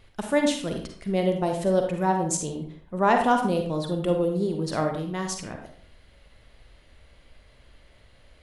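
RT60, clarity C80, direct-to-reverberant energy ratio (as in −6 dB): 0.55 s, 9.0 dB, 3.5 dB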